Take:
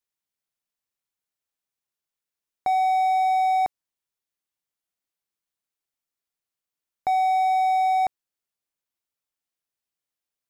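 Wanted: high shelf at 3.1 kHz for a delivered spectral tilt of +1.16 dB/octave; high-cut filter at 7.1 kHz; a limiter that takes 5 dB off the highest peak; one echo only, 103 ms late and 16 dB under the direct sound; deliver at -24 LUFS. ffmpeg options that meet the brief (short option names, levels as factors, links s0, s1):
-af "lowpass=7100,highshelf=f=3100:g=-6,alimiter=limit=0.0794:level=0:latency=1,aecho=1:1:103:0.158,volume=1.78"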